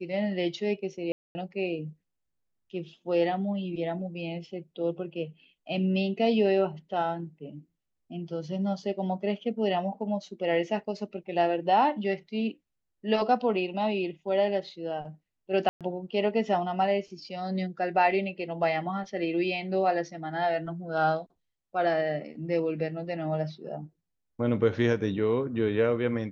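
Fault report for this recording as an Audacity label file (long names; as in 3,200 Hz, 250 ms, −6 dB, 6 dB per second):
1.120000	1.350000	drop-out 230 ms
15.690000	15.810000	drop-out 117 ms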